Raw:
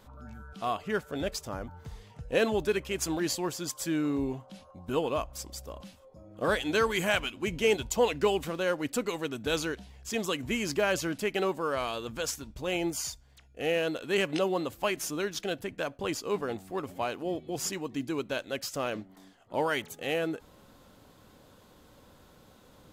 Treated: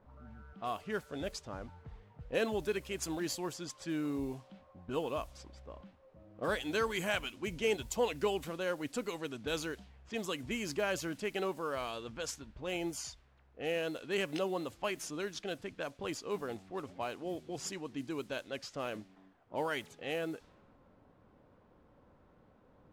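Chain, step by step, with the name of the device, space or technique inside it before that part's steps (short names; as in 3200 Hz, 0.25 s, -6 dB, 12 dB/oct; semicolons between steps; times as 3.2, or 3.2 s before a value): cassette deck with a dynamic noise filter (white noise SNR 25 dB; low-pass opened by the level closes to 990 Hz, open at -27.5 dBFS); gain -6.5 dB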